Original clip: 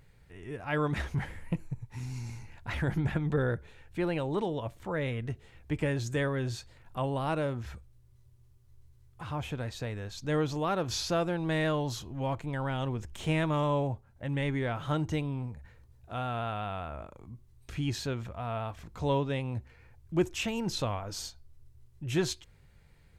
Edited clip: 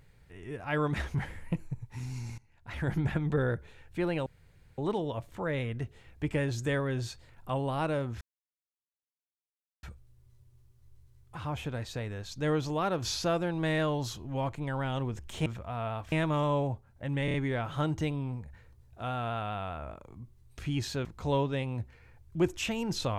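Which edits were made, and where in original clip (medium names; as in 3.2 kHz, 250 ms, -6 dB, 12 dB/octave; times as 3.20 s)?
2.38–2.90 s: fade in quadratic, from -19.5 dB
4.26 s: insert room tone 0.52 s
7.69 s: insert silence 1.62 s
14.45 s: stutter 0.03 s, 4 plays
18.16–18.82 s: move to 13.32 s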